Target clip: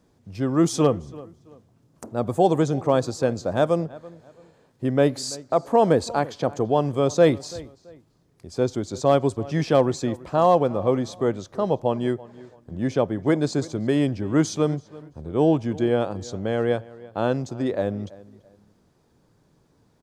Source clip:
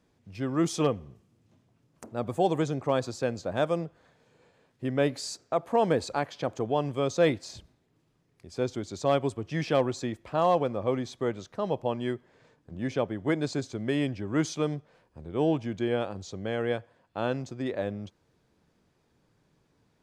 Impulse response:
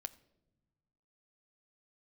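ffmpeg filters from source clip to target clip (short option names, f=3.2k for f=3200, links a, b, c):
-filter_complex "[0:a]equalizer=f=2.4k:t=o:w=1.3:g=-7,asplit=2[a][b];[b]adelay=334,lowpass=f=3.2k:p=1,volume=-20dB,asplit=2[c][d];[d]adelay=334,lowpass=f=3.2k:p=1,volume=0.31[e];[a][c][e]amix=inputs=3:normalize=0,volume=7dB"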